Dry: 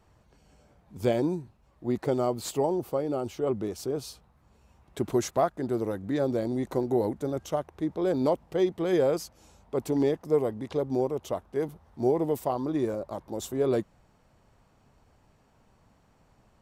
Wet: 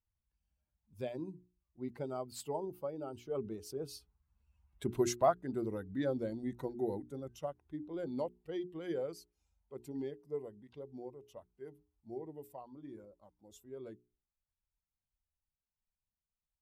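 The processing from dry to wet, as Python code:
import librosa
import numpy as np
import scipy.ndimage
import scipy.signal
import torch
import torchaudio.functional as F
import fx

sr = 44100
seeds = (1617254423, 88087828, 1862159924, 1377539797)

y = fx.bin_expand(x, sr, power=1.5)
y = fx.doppler_pass(y, sr, speed_mps=13, closest_m=17.0, pass_at_s=4.98)
y = fx.hum_notches(y, sr, base_hz=60, count=7)
y = F.gain(torch.from_numpy(y), -1.5).numpy()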